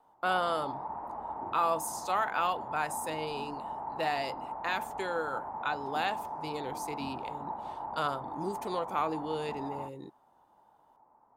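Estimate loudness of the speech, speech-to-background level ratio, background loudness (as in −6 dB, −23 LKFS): −34.5 LKFS, 5.5 dB, −40.0 LKFS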